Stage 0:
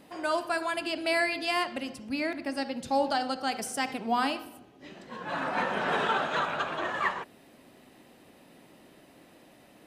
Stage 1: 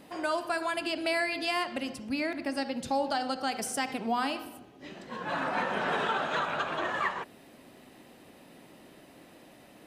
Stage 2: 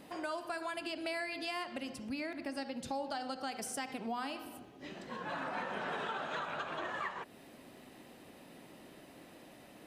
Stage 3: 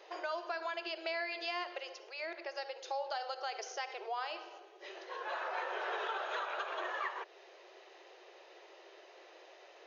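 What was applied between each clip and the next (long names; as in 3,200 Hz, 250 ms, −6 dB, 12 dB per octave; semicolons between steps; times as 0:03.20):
downward compressor 2 to 1, threshold −31 dBFS, peak gain reduction 5.5 dB; level +2 dB
downward compressor 2 to 1, threshold −40 dBFS, peak gain reduction 8.5 dB; level −1.5 dB
linear-phase brick-wall band-pass 340–6,900 Hz; level +1 dB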